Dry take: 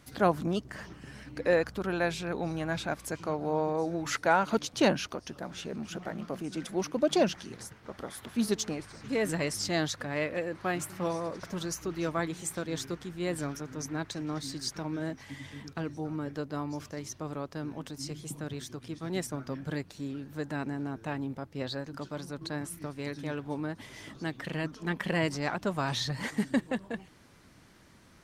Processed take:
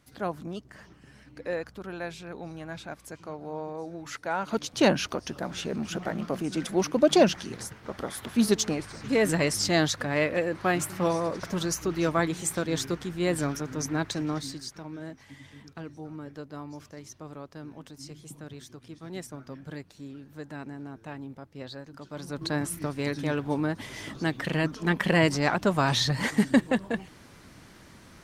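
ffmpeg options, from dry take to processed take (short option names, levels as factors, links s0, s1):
-af "volume=7.94,afade=t=in:st=4.3:d=0.85:silence=0.237137,afade=t=out:st=14.21:d=0.47:silence=0.281838,afade=t=in:st=22.06:d=0.44:silence=0.251189"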